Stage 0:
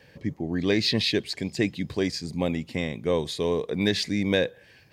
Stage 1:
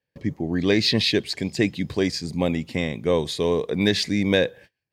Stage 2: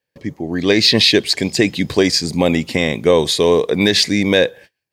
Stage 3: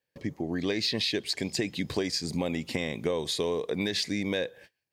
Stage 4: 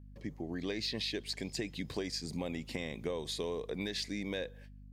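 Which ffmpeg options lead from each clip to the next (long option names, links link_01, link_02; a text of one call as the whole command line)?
ffmpeg -i in.wav -af "agate=range=-33dB:threshold=-47dB:ratio=16:detection=peak,volume=3.5dB" out.wav
ffmpeg -i in.wav -af "bass=frequency=250:gain=-6,treble=frequency=4000:gain=3,dynaudnorm=framelen=210:gausssize=7:maxgain=11.5dB,alimiter=level_in=5dB:limit=-1dB:release=50:level=0:latency=1,volume=-1dB" out.wav
ffmpeg -i in.wav -af "acompressor=threshold=-23dB:ratio=4,volume=-5dB" out.wav
ffmpeg -i in.wav -af "aeval=exprs='val(0)+0.00708*(sin(2*PI*50*n/s)+sin(2*PI*2*50*n/s)/2+sin(2*PI*3*50*n/s)/3+sin(2*PI*4*50*n/s)/4+sin(2*PI*5*50*n/s)/5)':channel_layout=same,volume=-8dB" out.wav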